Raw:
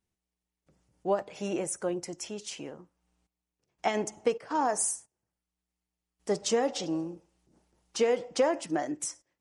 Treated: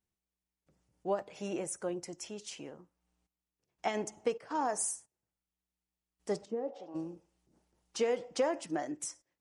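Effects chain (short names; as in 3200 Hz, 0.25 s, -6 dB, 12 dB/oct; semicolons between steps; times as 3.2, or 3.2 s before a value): 6.44–6.94 band-pass 220 Hz -> 1000 Hz, Q 1.8; gain -5 dB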